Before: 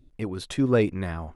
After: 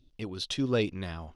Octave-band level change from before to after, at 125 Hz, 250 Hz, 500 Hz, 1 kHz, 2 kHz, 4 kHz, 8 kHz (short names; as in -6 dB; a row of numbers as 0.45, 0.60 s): -6.5, -6.5, -6.5, -6.5, -4.0, +5.0, -0.5 dB